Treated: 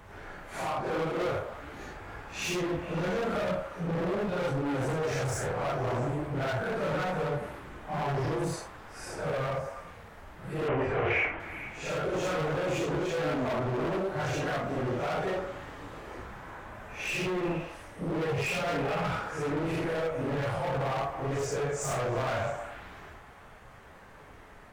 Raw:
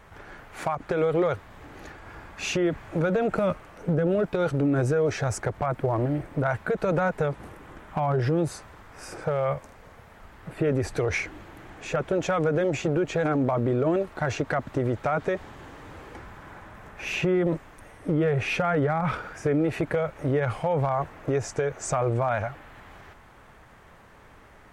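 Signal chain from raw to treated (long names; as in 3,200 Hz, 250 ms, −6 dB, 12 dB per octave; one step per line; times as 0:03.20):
random phases in long frames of 200 ms
gain into a clipping stage and back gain 29 dB
0:10.68–0:11.40: drawn EQ curve 330 Hz 0 dB, 660 Hz +6 dB, 2,900 Hz +5 dB, 4,100 Hz −14 dB, 10,000 Hz −26 dB
echo through a band-pass that steps 110 ms, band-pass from 540 Hz, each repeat 0.7 octaves, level −5 dB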